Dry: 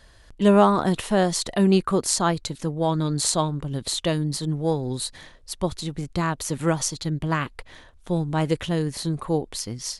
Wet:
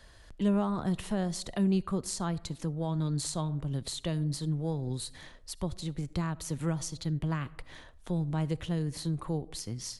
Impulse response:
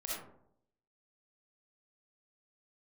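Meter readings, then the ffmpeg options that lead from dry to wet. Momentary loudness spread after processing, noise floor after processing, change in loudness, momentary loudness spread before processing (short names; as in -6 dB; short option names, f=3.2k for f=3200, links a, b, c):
9 LU, -54 dBFS, -9.0 dB, 10 LU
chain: -filter_complex "[0:a]asplit=2[a][b];[1:a]atrim=start_sample=2205[c];[b][c]afir=irnorm=-1:irlink=0,volume=-21.5dB[d];[a][d]amix=inputs=2:normalize=0,acrossover=split=180[e][f];[f]acompressor=threshold=-39dB:ratio=2[g];[e][g]amix=inputs=2:normalize=0,volume=-3dB"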